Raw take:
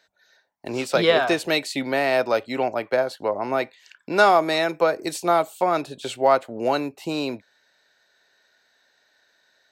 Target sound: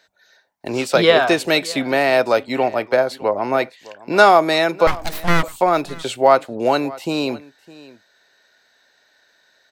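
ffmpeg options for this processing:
-filter_complex "[0:a]asettb=1/sr,asplit=3[s0][s1][s2];[s0]atrim=end=4.874[s3];[s1]atrim=start=4.87:end=5.43,asetpts=PTS-STARTPTS,afade=t=in:d=0.004:c=qsin,afade=t=out:st=0.556:d=0.004:c=qsin,aeval=exprs='abs(val(0))':c=same[s4];[s2]atrim=start=5.426[s5];[s3][s4]acrossfade=d=0.004:c1=hsin:c2=qsin[s6];[s6][s5]acrossfade=d=0.004:c1=qsin:c2=hsin,aecho=1:1:609:0.0944,volume=1.78"

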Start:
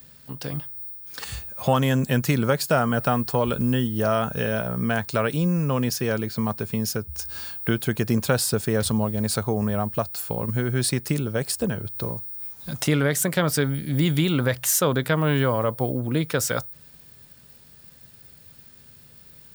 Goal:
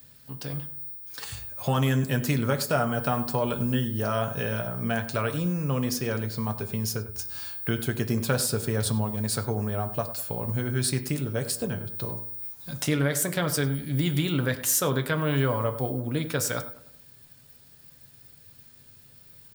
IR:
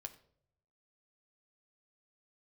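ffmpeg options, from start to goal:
-filter_complex "[0:a]equalizer=f=12000:t=o:w=2.6:g=3,asplit=2[s0][s1];[s1]adelay=100,lowpass=f=1700:p=1,volume=0.224,asplit=2[s2][s3];[s3]adelay=100,lowpass=f=1700:p=1,volume=0.45,asplit=2[s4][s5];[s5]adelay=100,lowpass=f=1700:p=1,volume=0.45,asplit=2[s6][s7];[s7]adelay=100,lowpass=f=1700:p=1,volume=0.45[s8];[s0][s2][s4][s6][s8]amix=inputs=5:normalize=0[s9];[1:a]atrim=start_sample=2205,afade=t=out:st=0.17:d=0.01,atrim=end_sample=7938[s10];[s9][s10]afir=irnorm=-1:irlink=0"

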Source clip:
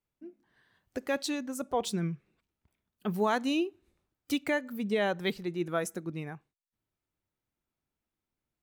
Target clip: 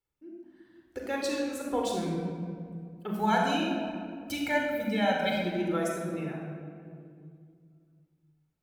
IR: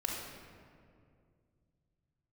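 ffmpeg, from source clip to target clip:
-filter_complex "[0:a]asettb=1/sr,asplit=3[s0][s1][s2];[s0]atrim=end=3.194[s3];[s1]atrim=start=3.19:end=5.33,asetpts=PTS-STARTPTS,afade=t=in:d=0.004:c=qsin,afade=t=out:st=2.136:d=0.004:c=qsin,aecho=1:1:1.3:0.89,atrim=end_sample=94374[s4];[s2]atrim=start=5.326[s5];[s3][s4]acrossfade=d=0.004:c1=hsin:c2=qsin[s6];[s6][s5]acrossfade=d=0.004:c1=qsin:c2=hsin[s7];[1:a]atrim=start_sample=2205[s8];[s7][s8]afir=irnorm=-1:irlink=0,volume=0.75"

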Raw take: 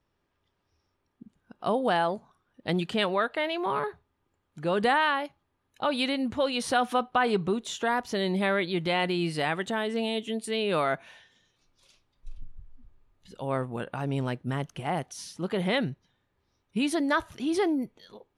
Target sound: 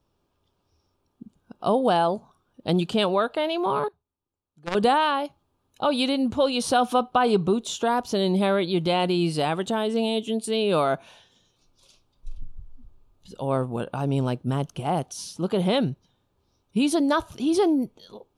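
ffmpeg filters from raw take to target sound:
-filter_complex "[0:a]equalizer=f=1900:w=2.4:g=-14.5,asettb=1/sr,asplit=3[s0][s1][s2];[s0]atrim=end=3.884[s3];[s1]atrim=start=3.88:end=4.75,asetpts=PTS-STARTPTS,afade=t=in:d=0.004:c=qsin,afade=t=out:st=0.866:d=0.004:c=qsin,aeval=exprs='0.141*(cos(1*acos(clip(val(0)/0.141,-1,1)))-cos(1*PI/2))+0.0708*(cos(3*acos(clip(val(0)/0.141,-1,1)))-cos(3*PI/2))+0.0178*(cos(5*acos(clip(val(0)/0.141,-1,1)))-cos(5*PI/2))':c=same[s4];[s2]atrim=start=4.746[s5];[s3][s4]acrossfade=d=0.004:c1=hsin:c2=qsin[s6];[s6][s5]acrossfade=d=0.004:c1=qsin:c2=hsin,volume=1.88"

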